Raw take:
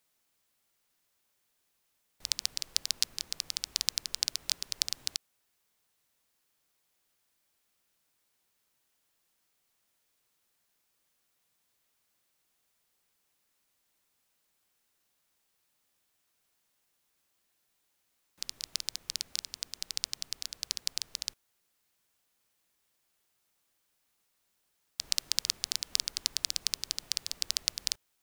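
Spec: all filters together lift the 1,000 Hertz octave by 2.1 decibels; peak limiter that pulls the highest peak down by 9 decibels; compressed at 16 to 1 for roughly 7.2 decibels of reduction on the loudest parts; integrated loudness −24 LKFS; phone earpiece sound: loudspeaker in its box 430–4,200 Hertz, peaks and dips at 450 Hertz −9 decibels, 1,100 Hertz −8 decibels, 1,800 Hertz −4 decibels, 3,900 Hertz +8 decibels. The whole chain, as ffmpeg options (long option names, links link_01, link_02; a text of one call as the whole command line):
ffmpeg -i in.wav -af "equalizer=frequency=1000:width_type=o:gain=8,acompressor=threshold=-30dB:ratio=16,alimiter=limit=-16.5dB:level=0:latency=1,highpass=430,equalizer=frequency=450:width_type=q:width=4:gain=-9,equalizer=frequency=1100:width_type=q:width=4:gain=-8,equalizer=frequency=1800:width_type=q:width=4:gain=-4,equalizer=frequency=3900:width_type=q:width=4:gain=8,lowpass=frequency=4200:width=0.5412,lowpass=frequency=4200:width=1.3066,volume=21dB" out.wav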